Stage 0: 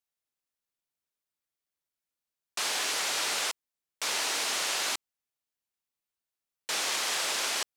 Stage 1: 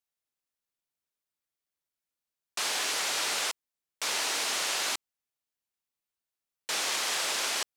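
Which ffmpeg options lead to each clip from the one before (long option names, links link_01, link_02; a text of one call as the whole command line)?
ffmpeg -i in.wav -af anull out.wav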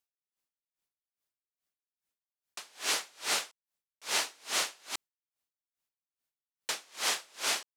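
ffmpeg -i in.wav -af "aeval=exprs='val(0)*pow(10,-34*(0.5-0.5*cos(2*PI*2.4*n/s))/20)':channel_layout=same,volume=3dB" out.wav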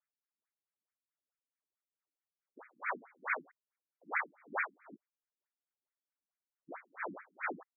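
ffmpeg -i in.wav -af "lowpass=frequency=2500:width_type=q:width=0.5098,lowpass=frequency=2500:width_type=q:width=0.6013,lowpass=frequency=2500:width_type=q:width=0.9,lowpass=frequency=2500:width_type=q:width=2.563,afreqshift=-2900,afftfilt=real='re*between(b*sr/1024,220*pow(1800/220,0.5+0.5*sin(2*PI*4.6*pts/sr))/1.41,220*pow(1800/220,0.5+0.5*sin(2*PI*4.6*pts/sr))*1.41)':imag='im*between(b*sr/1024,220*pow(1800/220,0.5+0.5*sin(2*PI*4.6*pts/sr))/1.41,220*pow(1800/220,0.5+0.5*sin(2*PI*4.6*pts/sr))*1.41)':win_size=1024:overlap=0.75,volume=4.5dB" out.wav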